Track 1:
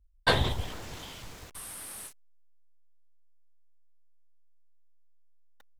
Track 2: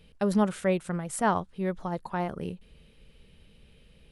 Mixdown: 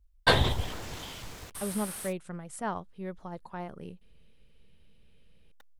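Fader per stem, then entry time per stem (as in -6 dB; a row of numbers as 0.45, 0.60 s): +2.0, -8.5 dB; 0.00, 1.40 s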